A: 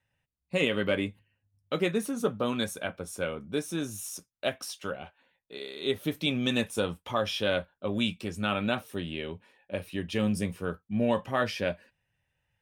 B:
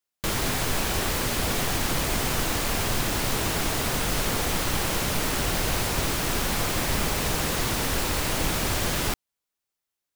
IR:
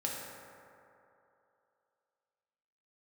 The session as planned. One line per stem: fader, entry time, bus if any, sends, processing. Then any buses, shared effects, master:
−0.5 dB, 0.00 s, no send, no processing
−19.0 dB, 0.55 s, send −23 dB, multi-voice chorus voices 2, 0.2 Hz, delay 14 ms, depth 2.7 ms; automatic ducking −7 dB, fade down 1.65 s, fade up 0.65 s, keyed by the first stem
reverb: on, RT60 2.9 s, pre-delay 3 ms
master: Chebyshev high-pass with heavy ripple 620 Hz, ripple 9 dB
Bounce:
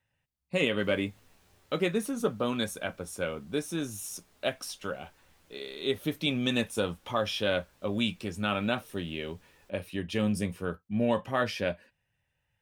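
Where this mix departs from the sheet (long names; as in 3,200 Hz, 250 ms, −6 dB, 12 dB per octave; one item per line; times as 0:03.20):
stem B −19.0 dB → −30.0 dB
master: missing Chebyshev high-pass with heavy ripple 620 Hz, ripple 9 dB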